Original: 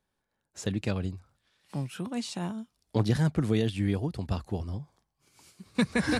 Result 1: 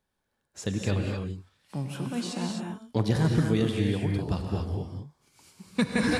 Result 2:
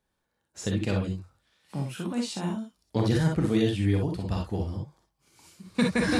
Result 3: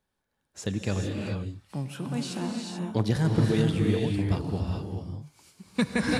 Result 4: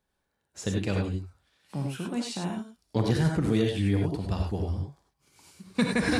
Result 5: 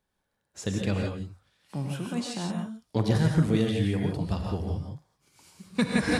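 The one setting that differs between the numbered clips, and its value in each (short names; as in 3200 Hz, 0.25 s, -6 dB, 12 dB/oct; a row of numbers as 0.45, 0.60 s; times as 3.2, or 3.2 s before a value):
non-linear reverb, gate: 280, 80, 460, 120, 190 ms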